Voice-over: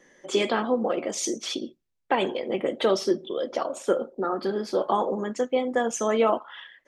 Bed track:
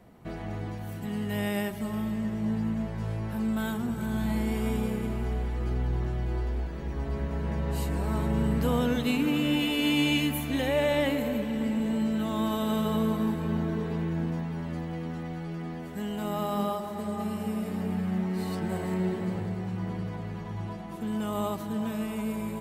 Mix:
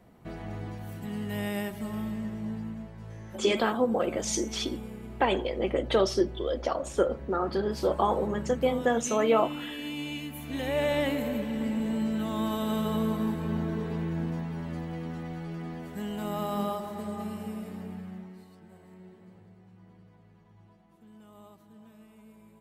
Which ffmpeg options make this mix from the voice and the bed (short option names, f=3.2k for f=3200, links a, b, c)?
-filter_complex "[0:a]adelay=3100,volume=-1.5dB[a];[1:a]volume=7dB,afade=t=out:st=2.04:d=0.89:silence=0.375837,afade=t=in:st=10.32:d=0.51:silence=0.334965,afade=t=out:st=16.83:d=1.65:silence=0.0944061[b];[a][b]amix=inputs=2:normalize=0"